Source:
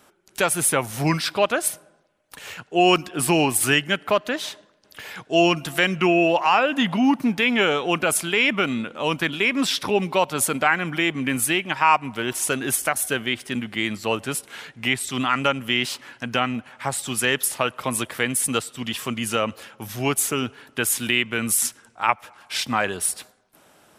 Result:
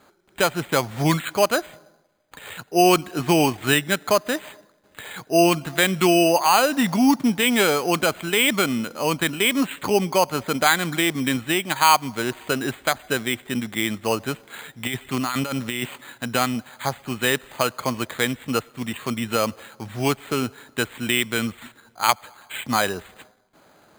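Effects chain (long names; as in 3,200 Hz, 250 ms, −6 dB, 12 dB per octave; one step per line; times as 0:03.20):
0:14.87–0:15.96: compressor whose output falls as the input rises −26 dBFS, ratio −1
bad sample-rate conversion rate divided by 8×, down filtered, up hold
level +1.5 dB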